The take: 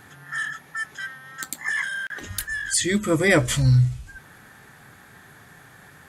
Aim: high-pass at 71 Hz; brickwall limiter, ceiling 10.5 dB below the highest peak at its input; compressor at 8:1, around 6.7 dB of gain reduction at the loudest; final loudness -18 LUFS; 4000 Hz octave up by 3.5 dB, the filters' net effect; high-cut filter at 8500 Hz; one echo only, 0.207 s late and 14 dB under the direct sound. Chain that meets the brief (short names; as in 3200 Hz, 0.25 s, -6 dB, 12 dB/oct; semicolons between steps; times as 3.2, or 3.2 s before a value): HPF 71 Hz; LPF 8500 Hz; bell 4000 Hz +4.5 dB; compressor 8:1, threshold -20 dBFS; limiter -19 dBFS; echo 0.207 s -14 dB; gain +10.5 dB